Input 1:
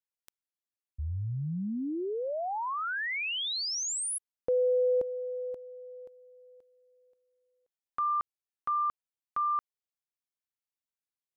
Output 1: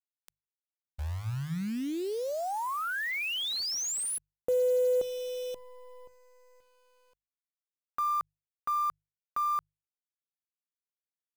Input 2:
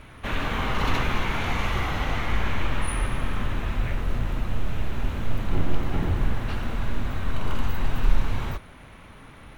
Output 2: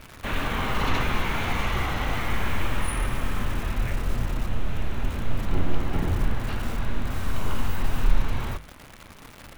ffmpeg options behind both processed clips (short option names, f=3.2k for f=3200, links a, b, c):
-af "acrusher=bits=8:dc=4:mix=0:aa=0.000001,bandreject=f=50:t=h:w=6,bandreject=f=100:t=h:w=6,bandreject=f=150:t=h:w=6"